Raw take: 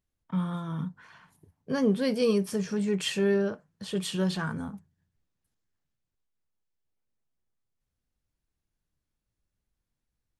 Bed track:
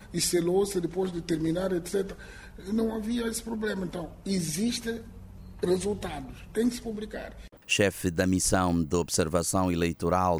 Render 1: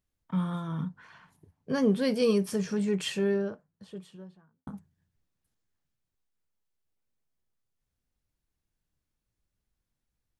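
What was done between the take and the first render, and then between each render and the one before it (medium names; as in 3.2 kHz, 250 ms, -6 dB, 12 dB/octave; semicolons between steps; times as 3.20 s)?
0.67–1.74 s: treble shelf 9.1 kHz -8 dB; 2.64–4.67 s: studio fade out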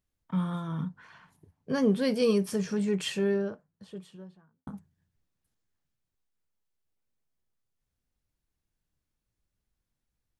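no audible change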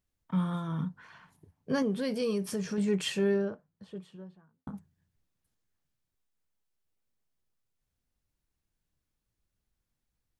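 1.82–2.78 s: compression 2:1, threshold -31 dBFS; 3.45–4.75 s: treble shelf 4.4 kHz -8.5 dB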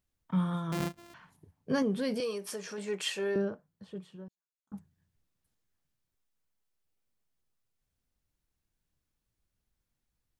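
0.72–1.14 s: sorted samples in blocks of 128 samples; 2.20–3.36 s: high-pass 450 Hz; 4.28–4.72 s: band-pass filter 6.8 kHz, Q 11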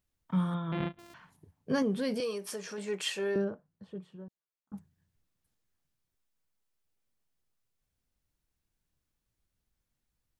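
0.54–0.99 s: Chebyshev low-pass 3.6 kHz, order 5; 3.44–4.73 s: treble shelf 2.3 kHz -8.5 dB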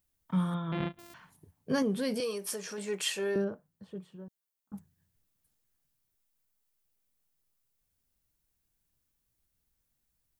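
treble shelf 8.7 kHz +11.5 dB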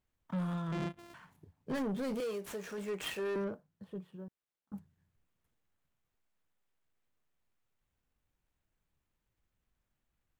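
median filter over 9 samples; saturation -31.5 dBFS, distortion -10 dB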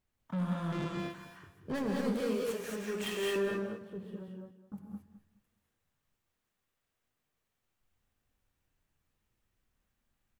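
feedback delay 210 ms, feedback 23%, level -14 dB; gated-style reverb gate 250 ms rising, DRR -1 dB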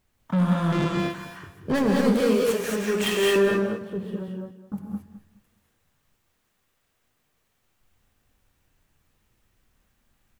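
trim +12 dB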